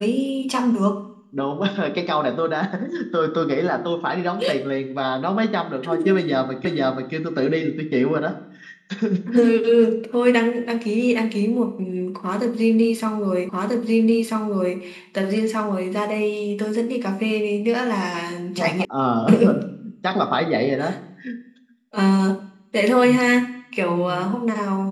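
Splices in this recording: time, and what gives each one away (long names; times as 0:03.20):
0:06.65: the same again, the last 0.48 s
0:13.49: the same again, the last 1.29 s
0:18.85: cut off before it has died away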